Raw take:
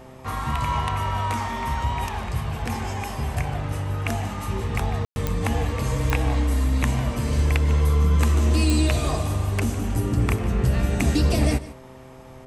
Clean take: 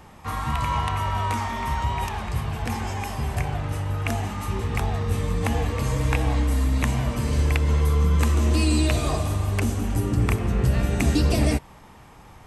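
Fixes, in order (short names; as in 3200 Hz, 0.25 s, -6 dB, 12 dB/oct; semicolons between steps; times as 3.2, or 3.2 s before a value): de-click; de-hum 129.7 Hz, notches 5; room tone fill 5.05–5.16; inverse comb 0.15 s -17 dB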